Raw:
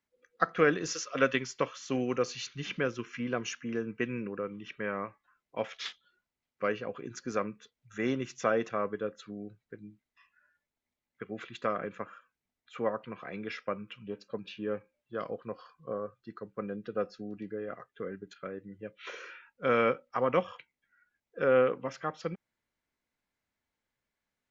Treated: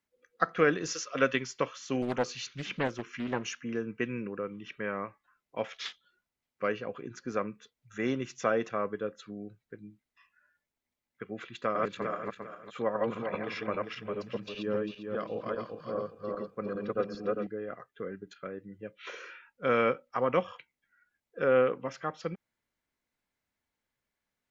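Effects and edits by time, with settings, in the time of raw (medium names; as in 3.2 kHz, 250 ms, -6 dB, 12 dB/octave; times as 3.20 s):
2.02–3.58 s: loudspeaker Doppler distortion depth 0.57 ms
7.02–7.48 s: treble shelf 5.3 kHz -10 dB
11.55–17.47 s: backward echo that repeats 200 ms, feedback 51%, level 0 dB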